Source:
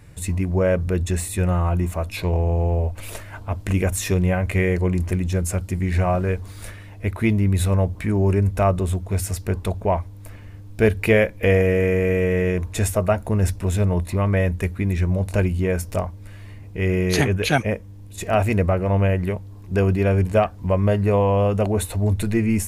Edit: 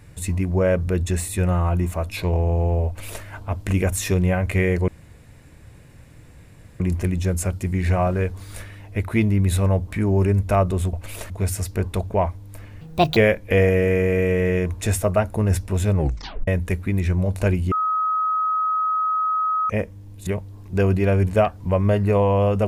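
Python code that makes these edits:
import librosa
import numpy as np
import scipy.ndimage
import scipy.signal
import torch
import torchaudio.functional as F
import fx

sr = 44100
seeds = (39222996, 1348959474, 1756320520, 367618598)

y = fx.edit(x, sr, fx.duplicate(start_s=2.87, length_s=0.37, to_s=9.01),
    fx.insert_room_tone(at_s=4.88, length_s=1.92),
    fx.speed_span(start_s=10.52, length_s=0.57, speed=1.6),
    fx.tape_stop(start_s=13.88, length_s=0.52),
    fx.bleep(start_s=15.64, length_s=1.98, hz=1270.0, db=-18.5),
    fx.cut(start_s=18.19, length_s=1.06), tone=tone)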